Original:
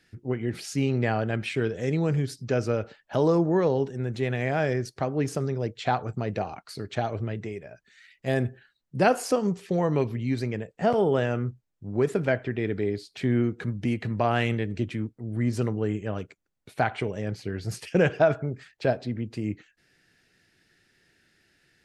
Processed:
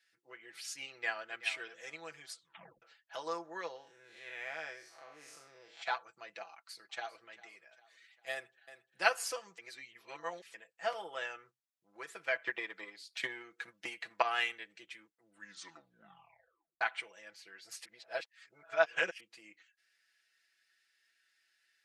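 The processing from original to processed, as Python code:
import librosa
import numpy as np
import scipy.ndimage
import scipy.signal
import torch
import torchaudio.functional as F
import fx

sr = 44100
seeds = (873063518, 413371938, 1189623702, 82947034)

y = fx.echo_throw(x, sr, start_s=0.93, length_s=0.5, ms=380, feedback_pct=40, wet_db=-11.5)
y = fx.spec_blur(y, sr, span_ms=151.0, at=(3.75, 5.81), fade=0.02)
y = fx.echo_throw(y, sr, start_s=6.49, length_s=0.75, ms=400, feedback_pct=50, wet_db=-15.5)
y = fx.echo_throw(y, sr, start_s=8.32, length_s=0.66, ms=350, feedback_pct=50, wet_db=-8.5)
y = fx.transient(y, sr, attack_db=11, sustain_db=3, at=(12.35, 14.22))
y = fx.edit(y, sr, fx.tape_stop(start_s=2.3, length_s=0.52),
    fx.reverse_span(start_s=9.58, length_s=0.96),
    fx.tape_stop(start_s=15.23, length_s=1.58),
    fx.reverse_span(start_s=17.85, length_s=1.35), tone=tone)
y = scipy.signal.sosfilt(scipy.signal.butter(2, 1300.0, 'highpass', fs=sr, output='sos'), y)
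y = y + 0.76 * np.pad(y, (int(6.0 * sr / 1000.0), 0))[:len(y)]
y = fx.upward_expand(y, sr, threshold_db=-42.0, expansion=1.5)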